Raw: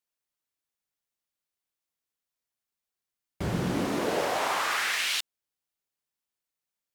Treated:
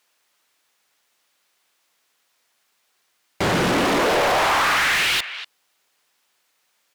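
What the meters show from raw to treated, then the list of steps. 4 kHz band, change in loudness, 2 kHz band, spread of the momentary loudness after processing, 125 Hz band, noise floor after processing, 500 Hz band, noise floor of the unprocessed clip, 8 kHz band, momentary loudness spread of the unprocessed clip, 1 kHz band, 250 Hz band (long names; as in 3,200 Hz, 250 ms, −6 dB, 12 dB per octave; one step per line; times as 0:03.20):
+9.0 dB, +9.0 dB, +10.5 dB, 8 LU, +4.5 dB, −69 dBFS, +9.5 dB, below −85 dBFS, +6.5 dB, 7 LU, +10.5 dB, +6.5 dB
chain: far-end echo of a speakerphone 240 ms, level −25 dB
dynamic equaliser 6,500 Hz, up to −6 dB, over −45 dBFS, Q 0.96
mid-hump overdrive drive 29 dB, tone 4,000 Hz, clips at −16 dBFS
level +3.5 dB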